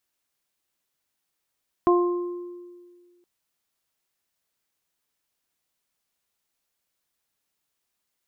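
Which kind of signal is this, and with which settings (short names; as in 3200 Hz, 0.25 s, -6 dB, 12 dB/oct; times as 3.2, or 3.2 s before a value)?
additive tone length 1.37 s, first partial 352 Hz, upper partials -8/-5 dB, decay 1.82 s, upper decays 0.62/1.02 s, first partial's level -15 dB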